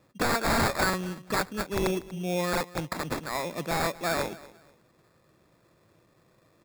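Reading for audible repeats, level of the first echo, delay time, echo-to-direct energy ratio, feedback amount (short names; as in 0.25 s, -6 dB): 2, -19.5 dB, 0.24 s, -19.0 dB, 27%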